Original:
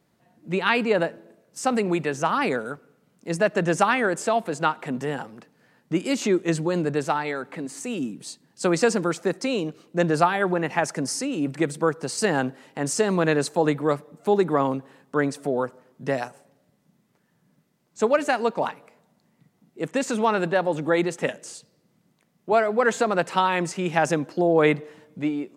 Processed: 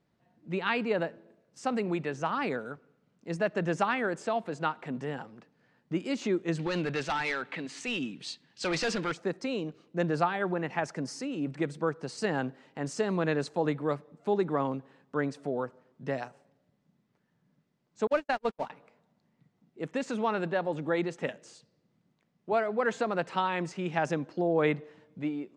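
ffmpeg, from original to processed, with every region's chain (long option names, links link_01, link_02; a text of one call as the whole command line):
ffmpeg -i in.wav -filter_complex "[0:a]asettb=1/sr,asplit=3[link_01][link_02][link_03];[link_01]atrim=end=6.594[link_04];[link_02]atrim=start=6.59:end=9.12,asetpts=PTS-STARTPTS,afade=type=in:duration=0.004:curve=qsin,afade=type=out:start_time=2.526:duration=0.004:curve=qsin,equalizer=frequency=3000:width_type=o:width=2.2:gain=15,volume=18dB,asoftclip=hard,volume=-18dB[link_05];[link_03]atrim=start=9.116[link_06];[link_04][link_05]acrossfade=duration=0.004:curve1=hsin:curve2=qsin[link_07];[link_07][link_06]acrossfade=duration=0.004:curve1=qsin:curve2=hsin,asettb=1/sr,asplit=3[link_08][link_09][link_10];[link_08]atrim=end=18.074[link_11];[link_09]atrim=start=18.07:end=18.7,asetpts=PTS-STARTPTS,afade=type=in:duration=0.004:curve=qsin,afade=type=out:start_time=0.626:duration=0.004:curve=qsin,aeval=exprs='val(0)+0.5*0.0355*sgn(val(0))':channel_layout=same,bandreject=frequency=50:width_type=h:width=6,bandreject=frequency=100:width_type=h:width=6,bandreject=frequency=150:width_type=h:width=6,bandreject=frequency=200:width_type=h:width=6,agate=range=-54dB:threshold=-22dB:ratio=16:release=100:detection=peak[link_12];[link_10]atrim=start=18.696[link_13];[link_11][link_12]acrossfade=duration=0.004:curve1=hsin:curve2=qsin[link_14];[link_14][link_13]acrossfade=duration=0.004:curve1=qsin:curve2=hsin,lowpass=5200,lowshelf=frequency=120:gain=5.5,volume=-8dB" out.wav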